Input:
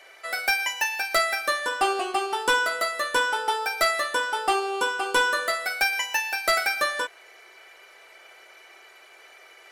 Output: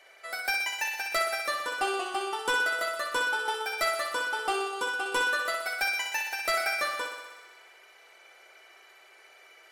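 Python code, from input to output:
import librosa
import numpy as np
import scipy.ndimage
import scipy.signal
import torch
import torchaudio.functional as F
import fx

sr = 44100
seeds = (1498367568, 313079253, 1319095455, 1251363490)

y = fx.echo_thinned(x, sr, ms=62, feedback_pct=74, hz=220.0, wet_db=-6.5)
y = y * 10.0 ** (-6.5 / 20.0)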